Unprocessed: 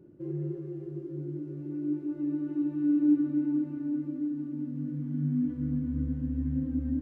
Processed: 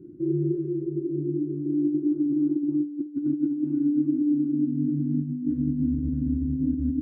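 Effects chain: negative-ratio compressor -31 dBFS, ratio -0.5; 0.82–3.06 elliptic low-pass 1300 Hz, stop band 50 dB; resonant low shelf 460 Hz +10.5 dB, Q 3; gain -8 dB

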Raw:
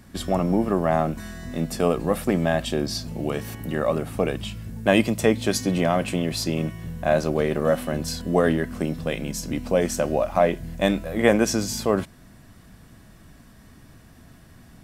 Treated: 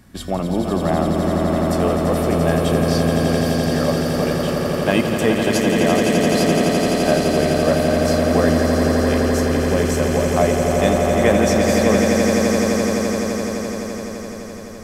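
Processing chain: swelling echo 85 ms, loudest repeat 8, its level -6.5 dB

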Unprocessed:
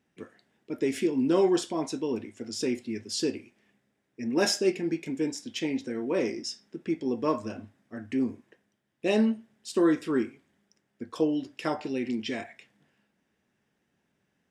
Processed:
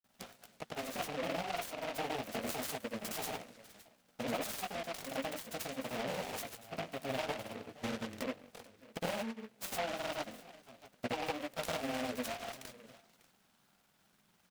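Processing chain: minimum comb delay 1.4 ms; HPF 210 Hz 12 dB/oct; high shelf 4500 Hz +9.5 dB; compressor 16:1, threshold -44 dBFS, peak gain reduction 25 dB; envelope phaser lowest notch 410 Hz, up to 3600 Hz, full sweep at -51.5 dBFS; echo 0.617 s -18.5 dB; chorus 0.27 Hz, delay 16 ms, depth 7.2 ms; grains; noise-modulated delay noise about 1700 Hz, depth 0.13 ms; gain +14 dB

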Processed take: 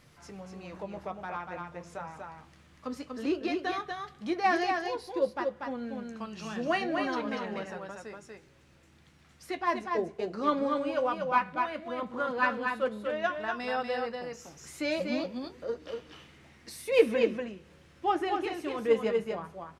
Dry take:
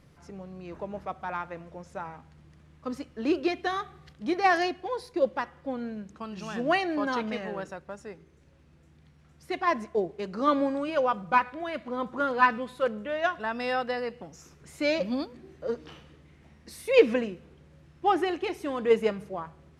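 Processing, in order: flange 0.24 Hz, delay 8.3 ms, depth 5.2 ms, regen -52%; on a send: echo 0.24 s -4.5 dB; on the sum: mismatched tape noise reduction encoder only

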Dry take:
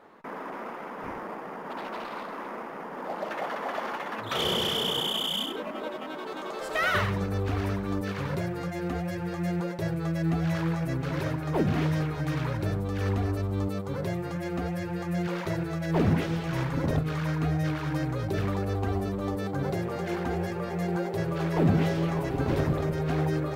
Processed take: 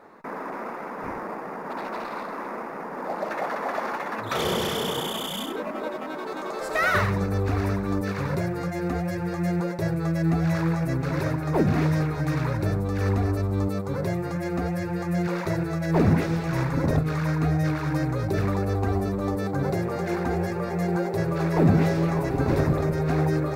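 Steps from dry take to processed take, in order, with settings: bell 3100 Hz -11.5 dB 0.32 oct; gain +4 dB

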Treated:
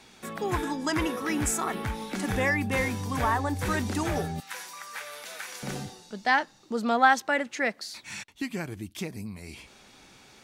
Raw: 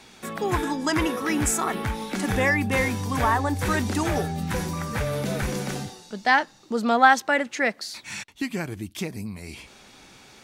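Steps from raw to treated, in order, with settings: 4.4–5.63 HPF 1200 Hz 12 dB/oct; gain -4 dB

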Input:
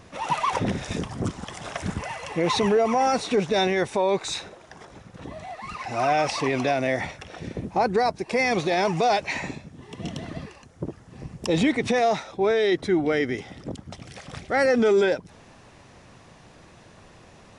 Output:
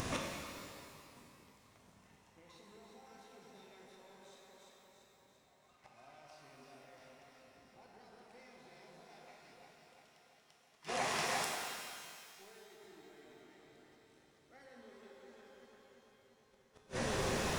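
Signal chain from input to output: 9.64–12.31 steep high-pass 810 Hz 72 dB/oct; upward compressor, threshold -31 dBFS; echo with dull and thin repeats by turns 0.171 s, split 1400 Hz, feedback 82%, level -2.5 dB; limiter -15 dBFS, peak gain reduction 8.5 dB; flipped gate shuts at -24 dBFS, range -34 dB; high shelf 4000 Hz +6.5 dB; sample leveller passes 1; shimmer reverb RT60 2.1 s, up +12 st, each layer -8 dB, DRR -0.5 dB; gain -6 dB

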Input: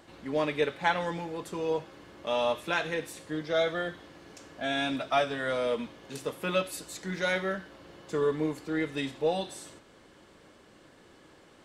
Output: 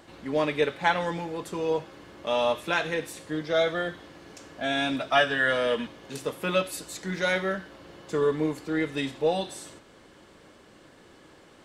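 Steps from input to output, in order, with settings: 5.15–5.87 small resonant body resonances 1700/2900 Hz, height 15 dB, ringing for 20 ms; gain +3 dB

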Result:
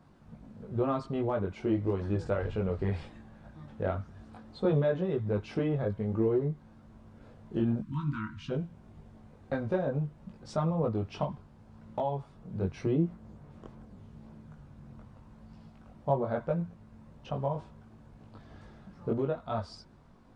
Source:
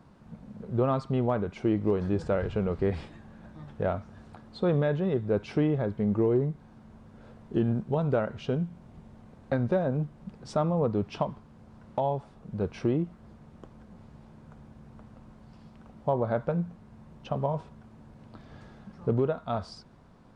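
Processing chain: chorus voices 4, 0.83 Hz, delay 20 ms, depth 2 ms; spectral delete 7.82–8.5, 330–920 Hz

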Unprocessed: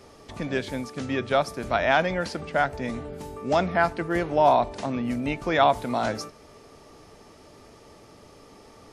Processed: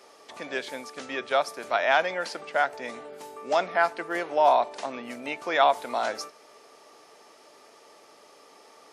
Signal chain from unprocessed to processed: HPF 510 Hz 12 dB/oct

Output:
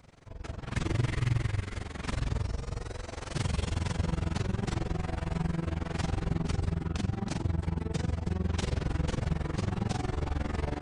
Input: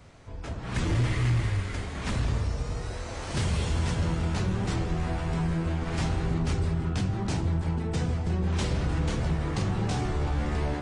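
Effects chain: AM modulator 22 Hz, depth 85%

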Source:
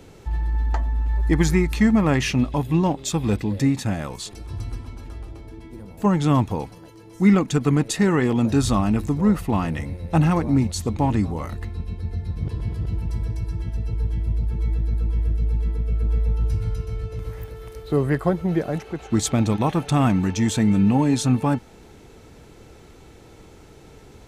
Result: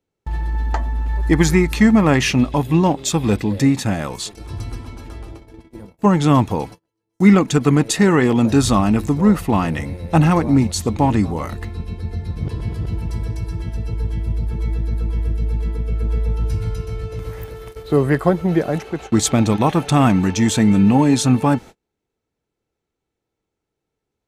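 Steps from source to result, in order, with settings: gate -37 dBFS, range -38 dB; low shelf 120 Hz -6 dB; gain +6 dB

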